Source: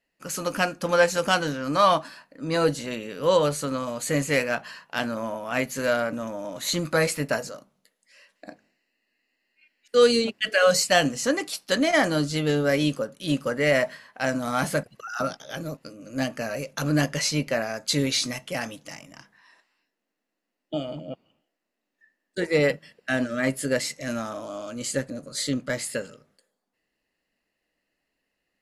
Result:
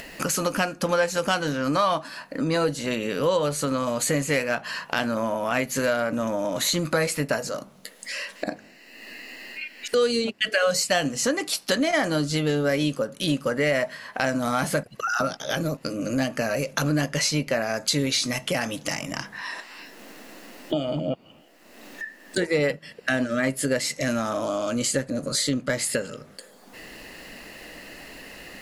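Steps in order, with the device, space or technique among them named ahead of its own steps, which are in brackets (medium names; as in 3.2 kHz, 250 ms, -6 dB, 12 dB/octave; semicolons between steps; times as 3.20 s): upward and downward compression (upward compressor, threshold -26 dBFS; compression 3:1, threshold -30 dBFS, peak gain reduction 13 dB); trim +7.5 dB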